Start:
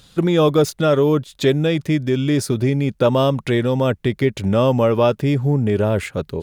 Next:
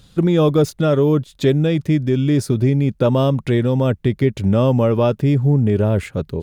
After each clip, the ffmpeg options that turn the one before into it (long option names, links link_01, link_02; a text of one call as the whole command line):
ffmpeg -i in.wav -af "lowshelf=frequency=370:gain=8.5,volume=-4dB" out.wav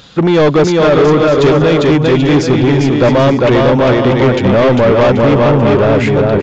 ffmpeg -i in.wav -filter_complex "[0:a]aecho=1:1:400|640|784|870.4|922.2:0.631|0.398|0.251|0.158|0.1,asplit=2[link_01][link_02];[link_02]highpass=frequency=720:poles=1,volume=25dB,asoftclip=type=tanh:threshold=-1dB[link_03];[link_01][link_03]amix=inputs=2:normalize=0,lowpass=frequency=2500:poles=1,volume=-6dB,aresample=16000,aresample=44100" out.wav